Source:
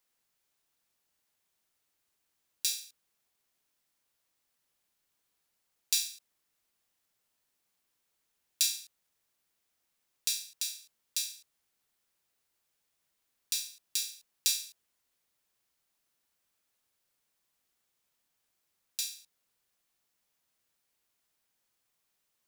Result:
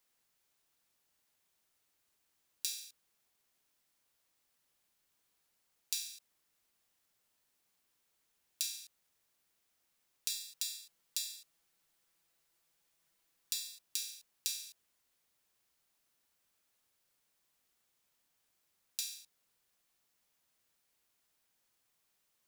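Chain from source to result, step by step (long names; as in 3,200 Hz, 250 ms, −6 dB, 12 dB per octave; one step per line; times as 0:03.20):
0:10.29–0:13.81: comb filter 6 ms, depth 54%
downward compressor 4 to 1, threshold −36 dBFS, peak gain reduction 11.5 dB
level +1 dB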